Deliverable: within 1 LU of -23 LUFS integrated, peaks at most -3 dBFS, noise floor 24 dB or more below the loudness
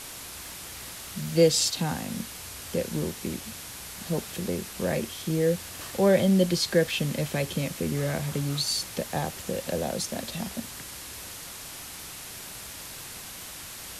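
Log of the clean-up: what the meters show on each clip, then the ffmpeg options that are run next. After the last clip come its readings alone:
noise floor -41 dBFS; noise floor target -53 dBFS; loudness -29.0 LUFS; peak -8.5 dBFS; loudness target -23.0 LUFS
-> -af "afftdn=nr=12:nf=-41"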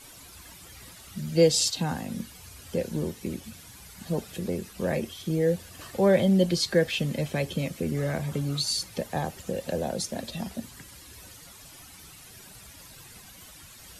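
noise floor -49 dBFS; noise floor target -52 dBFS
-> -af "afftdn=nr=6:nf=-49"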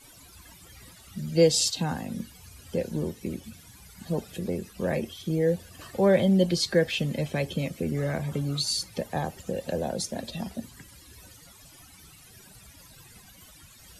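noise floor -52 dBFS; loudness -27.5 LUFS; peak -8.5 dBFS; loudness target -23.0 LUFS
-> -af "volume=4.5dB"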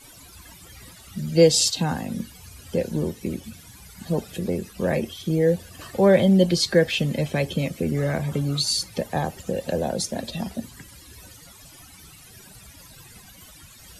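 loudness -23.0 LUFS; peak -4.0 dBFS; noise floor -48 dBFS

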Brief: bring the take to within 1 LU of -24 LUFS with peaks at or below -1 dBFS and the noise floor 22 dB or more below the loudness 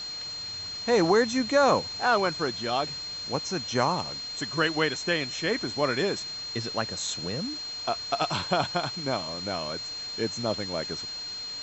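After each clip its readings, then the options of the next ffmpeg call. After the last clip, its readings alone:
steady tone 4200 Hz; tone level -34 dBFS; noise floor -37 dBFS; noise floor target -50 dBFS; loudness -27.5 LUFS; peak -9.0 dBFS; loudness target -24.0 LUFS
-> -af "bandreject=f=4.2k:w=30"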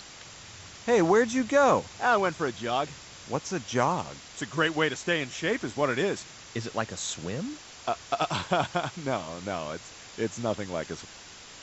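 steady tone none; noise floor -47 dBFS; noise floor target -51 dBFS
-> -af "afftdn=nr=6:nf=-47"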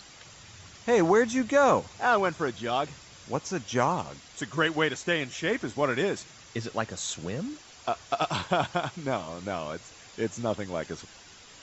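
noise floor -51 dBFS; loudness -28.5 LUFS; peak -9.5 dBFS; loudness target -24.0 LUFS
-> -af "volume=4.5dB"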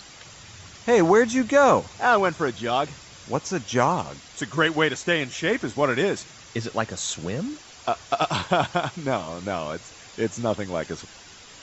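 loudness -24.0 LUFS; peak -5.0 dBFS; noise floor -46 dBFS

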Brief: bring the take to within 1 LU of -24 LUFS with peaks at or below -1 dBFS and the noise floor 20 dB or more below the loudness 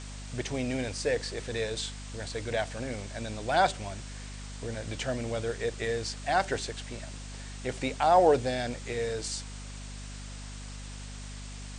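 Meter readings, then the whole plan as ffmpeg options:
hum 50 Hz; harmonics up to 250 Hz; hum level -39 dBFS; noise floor -42 dBFS; noise floor target -51 dBFS; loudness -31.0 LUFS; peak -10.0 dBFS; loudness target -24.0 LUFS
-> -af "bandreject=f=50:t=h:w=6,bandreject=f=100:t=h:w=6,bandreject=f=150:t=h:w=6,bandreject=f=200:t=h:w=6,bandreject=f=250:t=h:w=6"
-af "afftdn=nr=9:nf=-42"
-af "volume=7dB"

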